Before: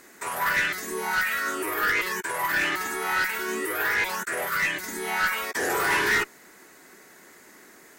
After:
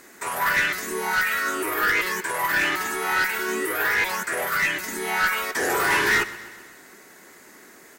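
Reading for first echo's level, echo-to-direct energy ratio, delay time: -17.0 dB, -15.0 dB, 129 ms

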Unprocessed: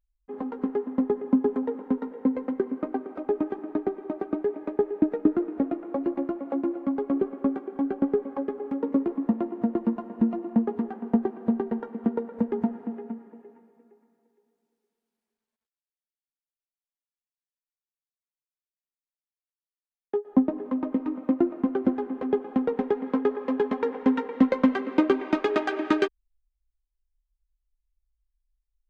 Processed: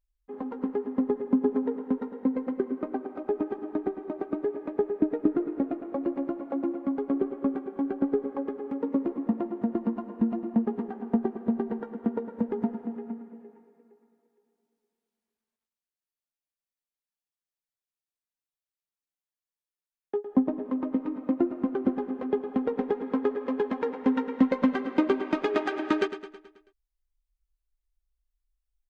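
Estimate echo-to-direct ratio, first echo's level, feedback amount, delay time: -10.5 dB, -12.0 dB, 55%, 108 ms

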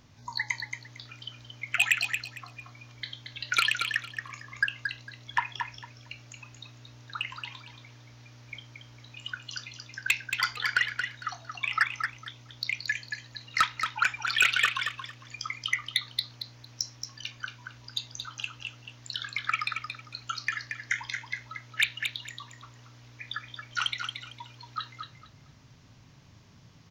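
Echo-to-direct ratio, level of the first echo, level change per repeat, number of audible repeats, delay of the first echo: -6.5 dB, -6.5 dB, -13.5 dB, 3, 227 ms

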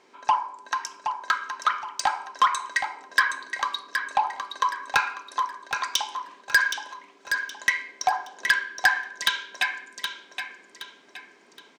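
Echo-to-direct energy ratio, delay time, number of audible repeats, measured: -6.5 dB, 770 ms, 4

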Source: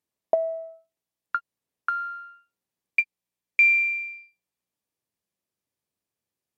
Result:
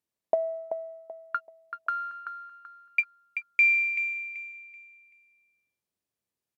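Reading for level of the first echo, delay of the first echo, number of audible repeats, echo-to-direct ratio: -8.5 dB, 383 ms, 3, -8.0 dB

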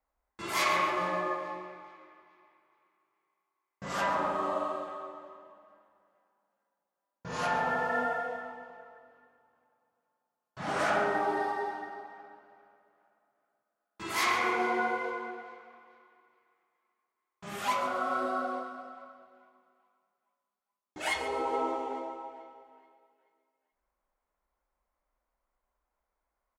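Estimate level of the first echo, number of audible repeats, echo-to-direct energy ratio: -13.0 dB, 2, -12.5 dB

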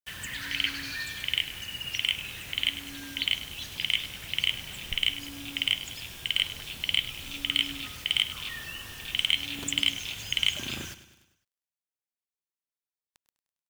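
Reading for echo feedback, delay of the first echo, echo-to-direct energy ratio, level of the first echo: 54%, 101 ms, -13.0 dB, -14.5 dB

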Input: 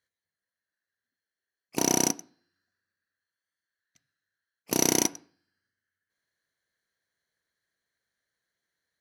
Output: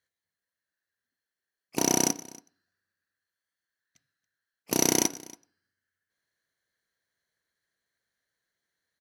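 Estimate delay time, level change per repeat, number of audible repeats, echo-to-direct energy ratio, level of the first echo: 280 ms, no regular repeats, 1, -22.0 dB, -22.0 dB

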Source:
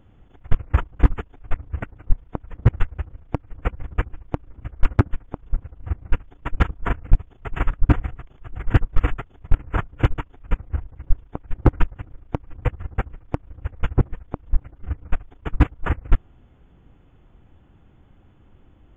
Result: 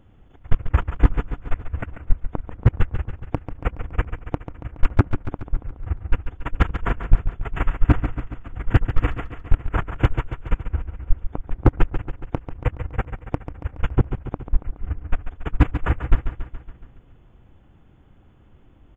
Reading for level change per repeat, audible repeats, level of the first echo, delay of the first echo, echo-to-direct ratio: -4.5 dB, 6, -10.0 dB, 140 ms, -8.0 dB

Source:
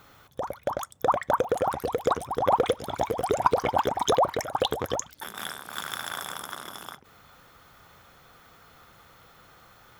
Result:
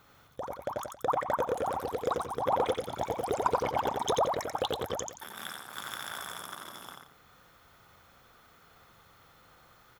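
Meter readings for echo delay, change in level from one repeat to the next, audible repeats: 88 ms, -10.5 dB, 2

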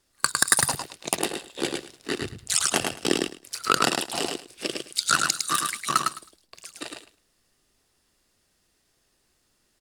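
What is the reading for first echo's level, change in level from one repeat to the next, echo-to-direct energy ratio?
-4.0 dB, -16.0 dB, -4.0 dB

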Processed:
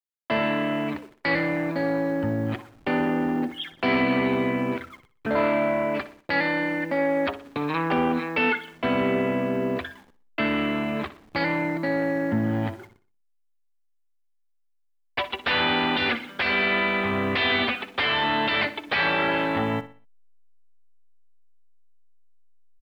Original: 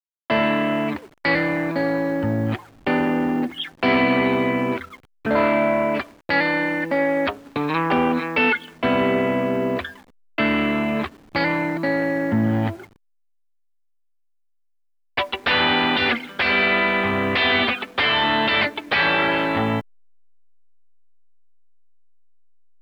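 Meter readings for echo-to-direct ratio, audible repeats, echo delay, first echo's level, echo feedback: -14.0 dB, 3, 61 ms, -14.5 dB, 38%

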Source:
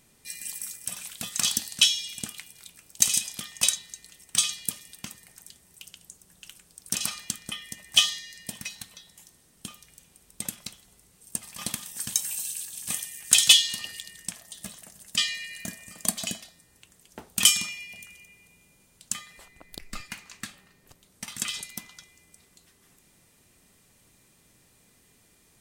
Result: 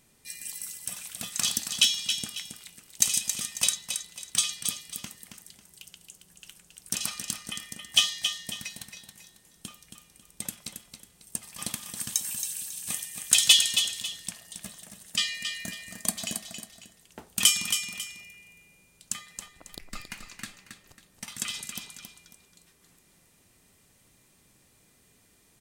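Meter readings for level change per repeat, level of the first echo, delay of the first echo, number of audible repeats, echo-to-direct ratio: -9.5 dB, -7.5 dB, 273 ms, 2, -7.0 dB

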